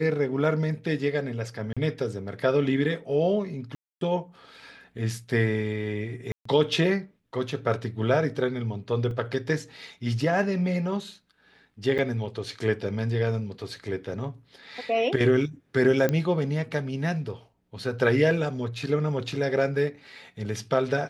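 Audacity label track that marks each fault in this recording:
1.730000	1.770000	gap 36 ms
3.750000	4.010000	gap 0.262 s
6.320000	6.450000	gap 0.134 s
9.110000	9.110000	gap 2.2 ms
11.980000	11.990000	gap 7 ms
16.090000	16.090000	pop -12 dBFS

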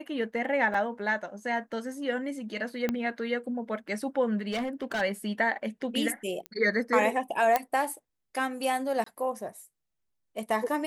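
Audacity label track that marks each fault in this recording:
0.740000	0.740000	gap 4.5 ms
2.890000	2.890000	pop -15 dBFS
4.510000	5.020000	clipped -27 dBFS
6.460000	6.460000	pop -22 dBFS
7.560000	7.560000	pop -10 dBFS
9.040000	9.060000	gap 24 ms

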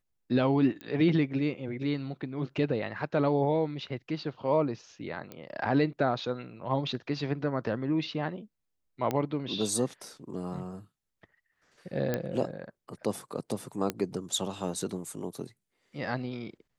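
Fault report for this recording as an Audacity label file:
0.810000	0.810000	pop -27 dBFS
5.320000	5.320000	pop -26 dBFS
9.110000	9.110000	pop -16 dBFS
12.140000	12.140000	pop -15 dBFS
13.900000	13.900000	pop -15 dBFS

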